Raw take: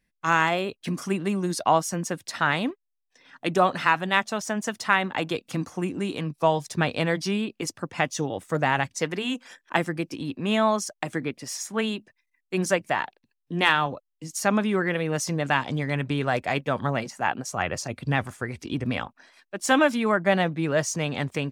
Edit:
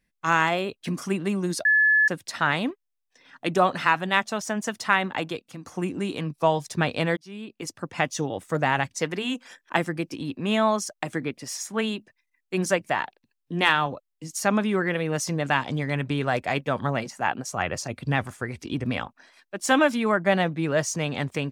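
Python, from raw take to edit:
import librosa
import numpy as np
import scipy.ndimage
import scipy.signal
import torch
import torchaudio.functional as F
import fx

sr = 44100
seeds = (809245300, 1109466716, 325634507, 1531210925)

y = fx.edit(x, sr, fx.bleep(start_s=1.65, length_s=0.43, hz=1720.0, db=-15.5),
    fx.fade_out_to(start_s=5.12, length_s=0.53, floor_db=-16.5),
    fx.fade_in_span(start_s=7.17, length_s=0.76), tone=tone)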